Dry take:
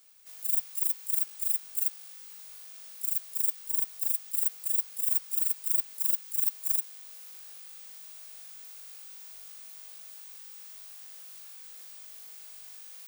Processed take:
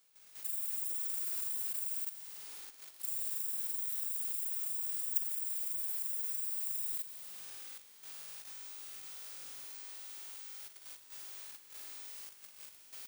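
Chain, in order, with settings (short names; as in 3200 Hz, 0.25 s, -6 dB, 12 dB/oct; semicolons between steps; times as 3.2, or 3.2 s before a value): 0.89–1.53 hard clip -21.5 dBFS, distortion -21 dB; flutter echo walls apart 8.9 m, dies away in 1.5 s; level quantiser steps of 11 dB; high shelf 6000 Hz -4 dB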